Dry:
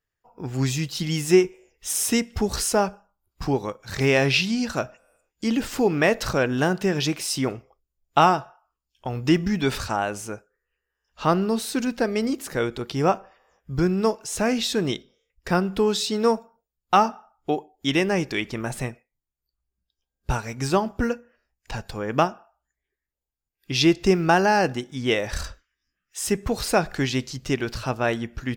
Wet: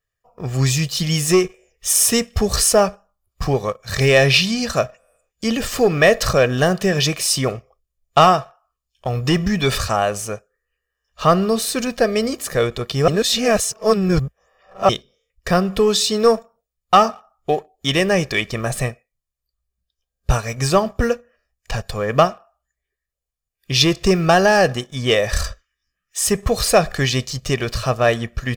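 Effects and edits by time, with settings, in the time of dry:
13.08–14.89 s: reverse
whole clip: waveshaping leveller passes 1; peaking EQ 10 kHz +2.5 dB 2 oct; comb 1.7 ms, depth 59%; trim +2 dB

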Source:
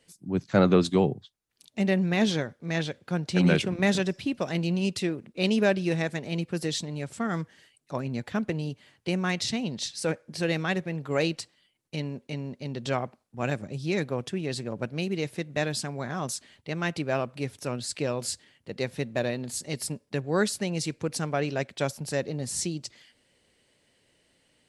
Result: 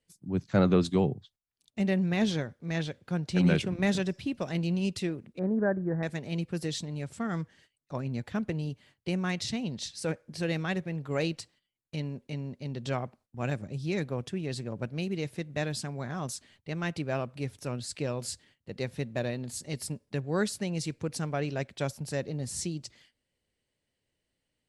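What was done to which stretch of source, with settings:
5.39–6.03 s: elliptic low-pass 1.7 kHz
7.22–8.06 s: low-pass 10 kHz
whole clip: gate -55 dBFS, range -12 dB; bass shelf 110 Hz +11.5 dB; trim -5 dB

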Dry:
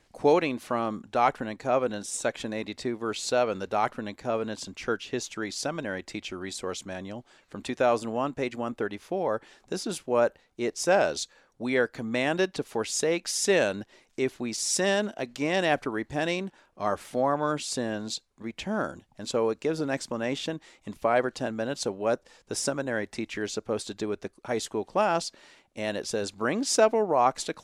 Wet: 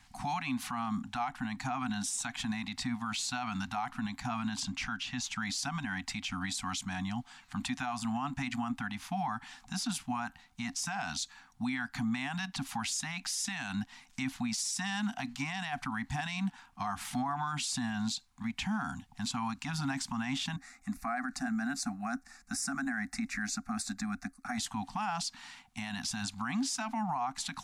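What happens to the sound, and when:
4.60–5.39 s: treble shelf 9.6 kHz -9 dB
20.56–24.58 s: static phaser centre 630 Hz, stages 8
whole clip: Chebyshev band-stop 270–720 Hz, order 5; compression, threshold -31 dBFS; peak limiter -31.5 dBFS; trim +5.5 dB

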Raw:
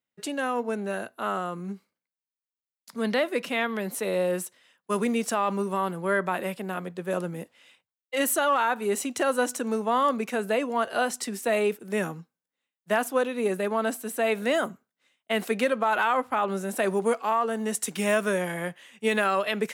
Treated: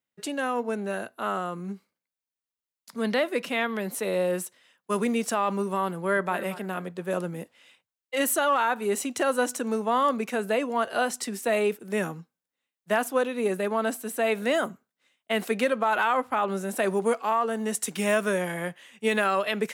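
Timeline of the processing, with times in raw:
5.92–6.35 s: echo throw 230 ms, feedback 35%, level -15 dB

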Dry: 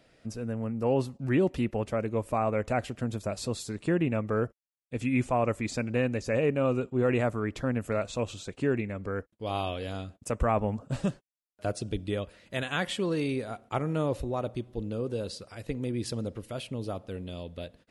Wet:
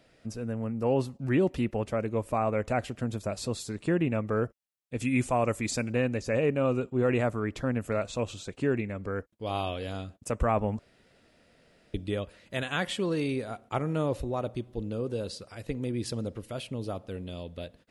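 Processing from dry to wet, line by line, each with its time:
5.00–5.93 s: treble shelf 5.7 kHz +11.5 dB
10.79–11.94 s: room tone

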